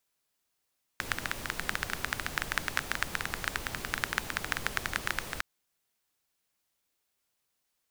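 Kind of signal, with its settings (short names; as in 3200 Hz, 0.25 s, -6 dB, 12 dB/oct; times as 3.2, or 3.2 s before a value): rain from filtered ticks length 4.41 s, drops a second 13, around 1600 Hz, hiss -4 dB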